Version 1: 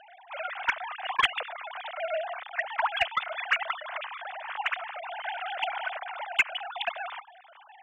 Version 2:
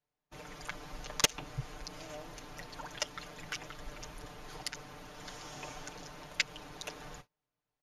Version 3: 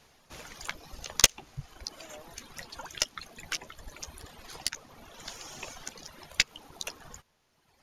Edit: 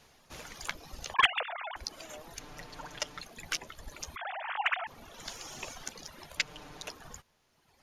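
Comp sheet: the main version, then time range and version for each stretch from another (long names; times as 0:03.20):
3
0:01.14–0:01.76: punch in from 1
0:02.39–0:03.21: punch in from 2
0:04.16–0:04.87: punch in from 1
0:06.37–0:06.89: punch in from 2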